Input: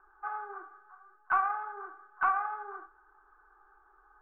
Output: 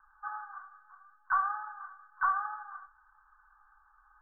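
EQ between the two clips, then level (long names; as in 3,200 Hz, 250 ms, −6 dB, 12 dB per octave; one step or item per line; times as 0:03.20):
elliptic band-stop filter 150–930 Hz, stop band 50 dB
linear-phase brick-wall low-pass 1,900 Hz
0.0 dB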